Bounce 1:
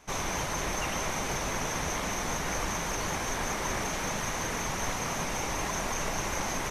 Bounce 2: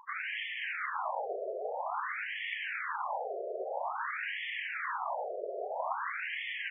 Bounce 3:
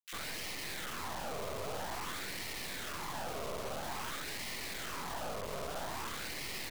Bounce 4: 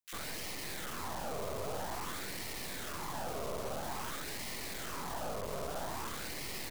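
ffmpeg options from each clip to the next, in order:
-filter_complex "[0:a]afftfilt=real='re*gte(hypot(re,im),0.00355)':imag='im*gte(hypot(re,im),0.00355)':win_size=1024:overlap=0.75,acrossover=split=310|1200[s0][s1][s2];[s1]acompressor=mode=upward:threshold=0.00501:ratio=2.5[s3];[s0][s3][s2]amix=inputs=3:normalize=0,afftfilt=real='re*between(b*sr/1024,490*pow(2500/490,0.5+0.5*sin(2*PI*0.5*pts/sr))/1.41,490*pow(2500/490,0.5+0.5*sin(2*PI*0.5*pts/sr))*1.41)':imag='im*between(b*sr/1024,490*pow(2500/490,0.5+0.5*sin(2*PI*0.5*pts/sr))/1.41,490*pow(2500/490,0.5+0.5*sin(2*PI*0.5*pts/sr))*1.41)':win_size=1024:overlap=0.75,volume=1.41"
-filter_complex "[0:a]alimiter=level_in=2.82:limit=0.0631:level=0:latency=1:release=39,volume=0.355,acrusher=bits=4:dc=4:mix=0:aa=0.000001,acrossover=split=2000[s0][s1];[s0]adelay=50[s2];[s2][s1]amix=inputs=2:normalize=0,volume=1.5"
-af "equalizer=f=2600:t=o:w=2.2:g=-5,volume=1.26"

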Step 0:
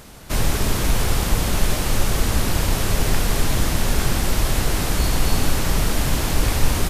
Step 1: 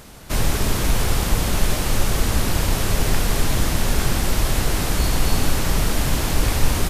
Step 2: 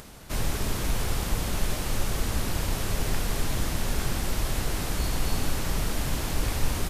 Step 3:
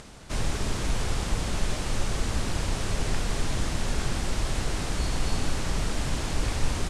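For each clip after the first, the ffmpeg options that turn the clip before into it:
-af anull
-af "acompressor=mode=upward:threshold=0.0251:ratio=2.5,volume=0.398"
-af "lowpass=f=9200:w=0.5412,lowpass=f=9200:w=1.3066"

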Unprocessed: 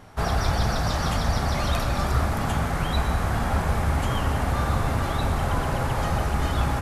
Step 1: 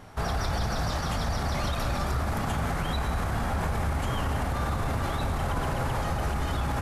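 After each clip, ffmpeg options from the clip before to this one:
-af "alimiter=limit=0.1:level=0:latency=1:release=46"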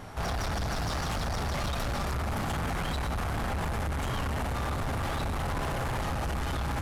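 -af "asoftclip=type=tanh:threshold=0.0224,volume=1.68"

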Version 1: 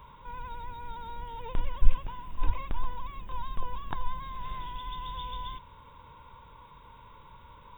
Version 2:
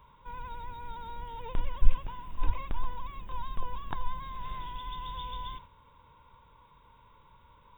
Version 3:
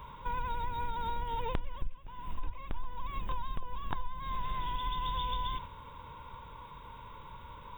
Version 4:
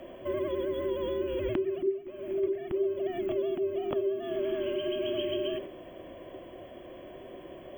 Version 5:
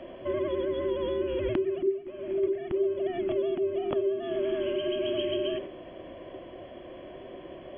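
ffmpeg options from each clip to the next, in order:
-af "agate=range=0.501:threshold=0.00447:ratio=16:detection=peak,volume=0.891"
-af "acompressor=threshold=0.01:ratio=12,volume=3.35"
-af "afreqshift=-400,volume=1.26"
-af "aresample=11025,aresample=44100,volume=1.26"

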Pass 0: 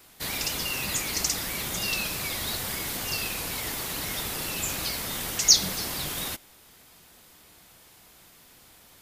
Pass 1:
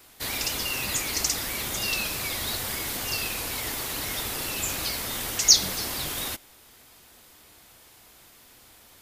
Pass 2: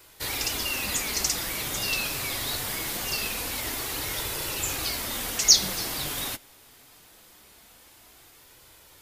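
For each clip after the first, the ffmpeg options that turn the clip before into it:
-af "equalizer=f=170:t=o:w=0.23:g=-11.5,volume=1.12"
-af "flanger=delay=2:depth=5.3:regen=-49:speed=0.23:shape=sinusoidal,volume=1.58"

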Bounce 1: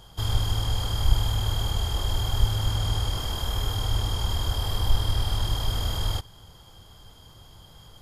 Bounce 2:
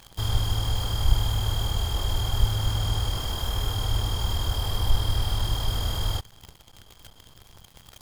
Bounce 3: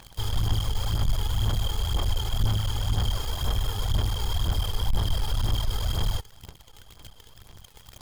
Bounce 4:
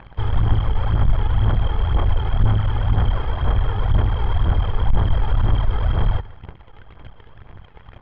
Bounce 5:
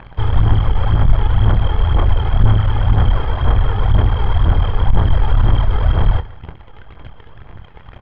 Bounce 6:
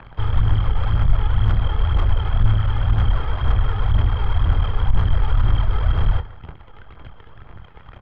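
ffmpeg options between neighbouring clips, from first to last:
-af "acrusher=bits=8:dc=4:mix=0:aa=0.000001"
-af "aeval=exprs='(tanh(15.8*val(0)+0.4)-tanh(0.4))/15.8':c=same,aphaser=in_gain=1:out_gain=1:delay=2.4:decay=0.49:speed=2:type=sinusoidal"
-af "lowpass=f=2200:w=0.5412,lowpass=f=2200:w=1.3066,aecho=1:1:145:0.106,volume=2.51"
-filter_complex "[0:a]asplit=2[s0][s1];[s1]adelay=26,volume=0.251[s2];[s0][s2]amix=inputs=2:normalize=0,volume=1.68"
-filter_complex "[0:a]equalizer=f=1300:t=o:w=0.32:g=5,acrossover=split=140|1500[s0][s1][s2];[s1]asoftclip=type=tanh:threshold=0.0501[s3];[s0][s3][s2]amix=inputs=3:normalize=0,volume=0.631"

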